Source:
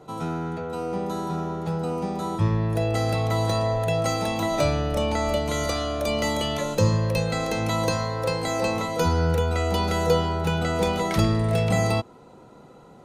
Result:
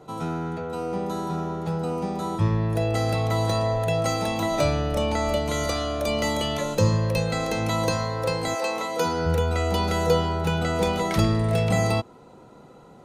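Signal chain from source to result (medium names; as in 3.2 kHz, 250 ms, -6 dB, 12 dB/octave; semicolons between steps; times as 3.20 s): 8.54–9.25 s: high-pass 590 Hz -> 160 Hz 12 dB/octave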